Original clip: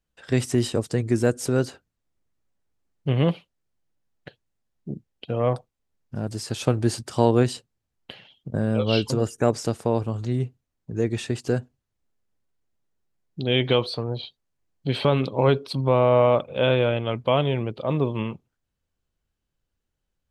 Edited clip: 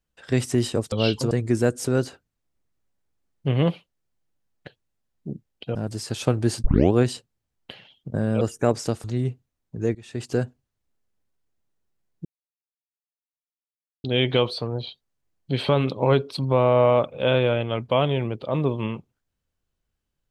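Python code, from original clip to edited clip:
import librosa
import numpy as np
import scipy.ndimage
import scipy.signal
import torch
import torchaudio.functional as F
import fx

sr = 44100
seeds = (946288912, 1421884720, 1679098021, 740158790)

y = fx.edit(x, sr, fx.cut(start_s=5.36, length_s=0.79),
    fx.tape_start(start_s=7.04, length_s=0.29),
    fx.move(start_s=8.81, length_s=0.39, to_s=0.92),
    fx.cut(start_s=9.83, length_s=0.36),
    fx.fade_in_from(start_s=11.1, length_s=0.29, curve='qua', floor_db=-19.5),
    fx.insert_silence(at_s=13.4, length_s=1.79), tone=tone)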